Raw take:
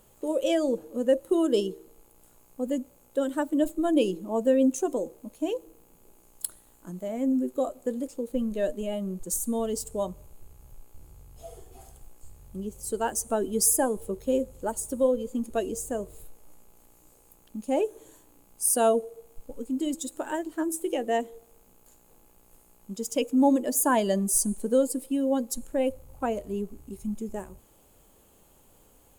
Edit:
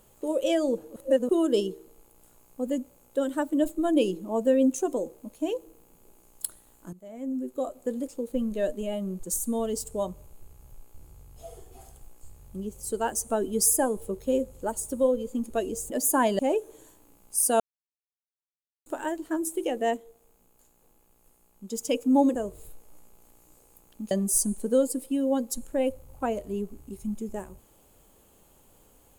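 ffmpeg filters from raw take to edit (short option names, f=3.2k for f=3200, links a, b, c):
-filter_complex "[0:a]asplit=12[a][b][c][d][e][f][g][h][i][j][k][l];[a]atrim=end=0.962[m];[b]atrim=start=0.958:end=1.292,asetpts=PTS-STARTPTS,areverse[n];[c]atrim=start=1.288:end=6.93,asetpts=PTS-STARTPTS,afade=t=out:st=5.638:d=0.004:c=hsin:silence=0.158489[o];[d]atrim=start=6.93:end=15.902,asetpts=PTS-STARTPTS,afade=t=in:d=1.03:silence=0.158489[p];[e]atrim=start=23.618:end=24.112[q];[f]atrim=start=17.658:end=18.87,asetpts=PTS-STARTPTS,afade=t=out:st=1.208:d=0.004:c=hsin[r];[g]atrim=start=18.87:end=20.13,asetpts=PTS-STARTPTS,volume=0[s];[h]atrim=start=20.13:end=21.242,asetpts=PTS-STARTPTS,afade=t=in:d=0.004:c=hsin[t];[i]atrim=start=21.238:end=22.972,asetpts=PTS-STARTPTS,volume=-5dB[u];[j]atrim=start=22.968:end=23.622[v];[k]atrim=start=15.898:end=17.662[w];[l]atrim=start=24.108[x];[m][n]acrossfade=d=0.004:c1=hsin:c2=hsin[y];[o][p]concat=n=2:v=0:a=1[z];[y][z]acrossfade=d=0.004:c1=hsin:c2=hsin[aa];[aa][q]acrossfade=d=0.004:c1=hsin:c2=hsin[ab];[r][s][t]concat=n=3:v=0:a=1[ac];[ab][ac]acrossfade=d=0.004:c1=hsin:c2=hsin[ad];[ad][u]acrossfade=d=0.004:c1=hsin:c2=hsin[ae];[ae][v]acrossfade=d=0.004:c1=hsin:c2=hsin[af];[af][w]acrossfade=d=0.004:c1=hsin:c2=hsin[ag];[ag][x]acrossfade=d=0.004:c1=hsin:c2=hsin"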